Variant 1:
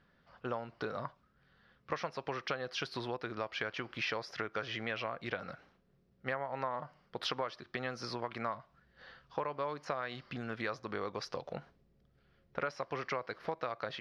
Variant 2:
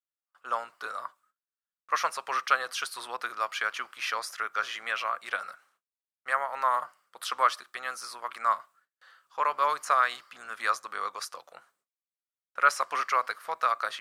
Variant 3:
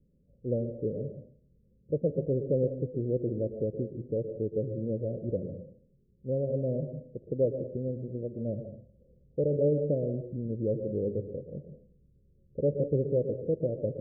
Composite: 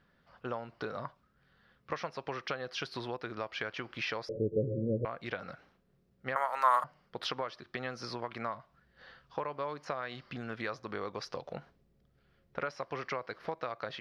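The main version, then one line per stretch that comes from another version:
1
4.29–5.05 s: from 3
6.36–6.84 s: from 2

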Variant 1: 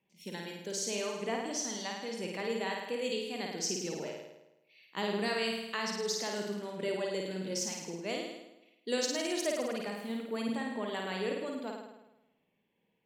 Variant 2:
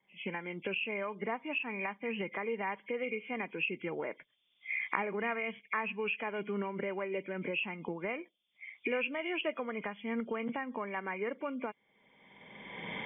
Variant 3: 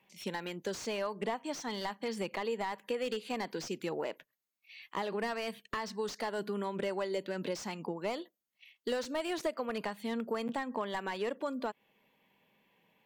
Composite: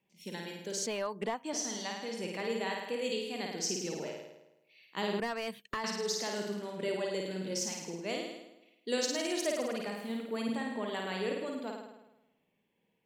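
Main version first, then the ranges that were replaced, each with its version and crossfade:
1
0.86–1.53 s: from 3
5.20–5.84 s: from 3
not used: 2

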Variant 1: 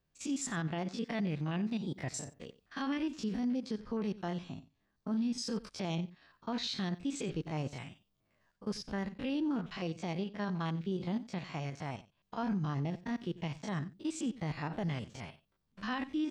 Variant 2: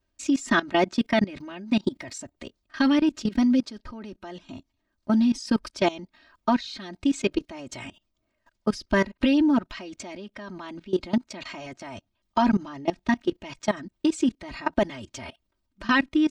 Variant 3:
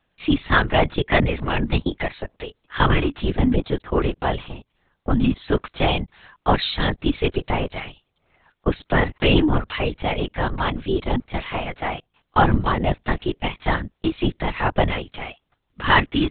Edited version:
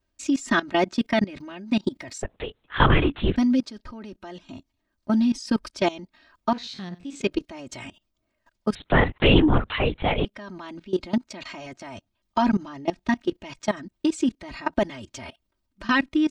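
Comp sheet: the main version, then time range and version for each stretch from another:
2
2.23–3.36 s: from 3
6.53–7.21 s: from 1
8.75–10.25 s: from 3

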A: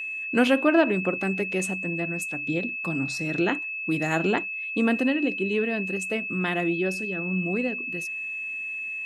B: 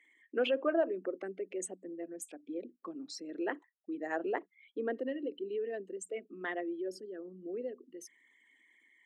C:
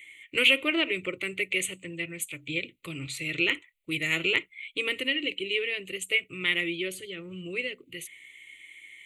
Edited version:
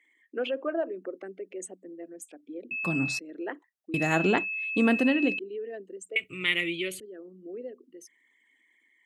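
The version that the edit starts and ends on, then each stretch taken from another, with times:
B
2.71–3.19 s: from A
3.94–5.39 s: from A
6.16–7.00 s: from C

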